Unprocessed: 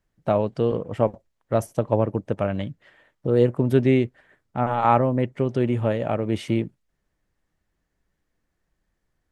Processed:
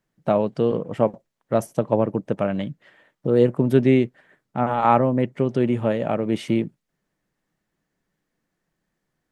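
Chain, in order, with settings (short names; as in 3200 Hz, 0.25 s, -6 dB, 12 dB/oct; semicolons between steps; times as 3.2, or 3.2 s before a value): resonant low shelf 110 Hz -10.5 dB, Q 1.5; gain +1 dB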